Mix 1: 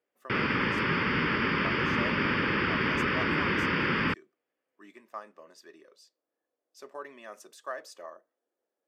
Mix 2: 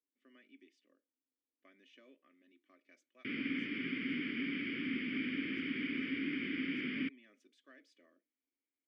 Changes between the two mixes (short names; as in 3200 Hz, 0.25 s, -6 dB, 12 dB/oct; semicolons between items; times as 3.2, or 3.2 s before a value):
background: entry +2.95 s; master: add vowel filter i